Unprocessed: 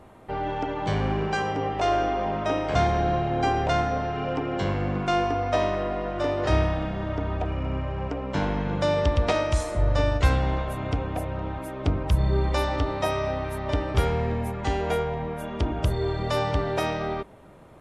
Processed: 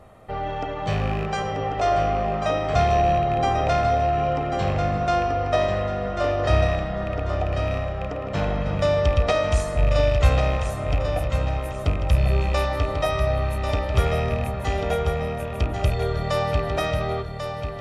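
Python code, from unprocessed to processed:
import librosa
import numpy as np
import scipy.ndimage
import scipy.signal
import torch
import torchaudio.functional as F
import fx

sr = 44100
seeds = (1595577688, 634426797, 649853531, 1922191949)

p1 = fx.rattle_buzz(x, sr, strikes_db=-24.0, level_db=-25.0)
p2 = p1 + 0.48 * np.pad(p1, (int(1.6 * sr / 1000.0), 0))[:len(p1)]
y = p2 + fx.echo_feedback(p2, sr, ms=1092, feedback_pct=36, wet_db=-7.0, dry=0)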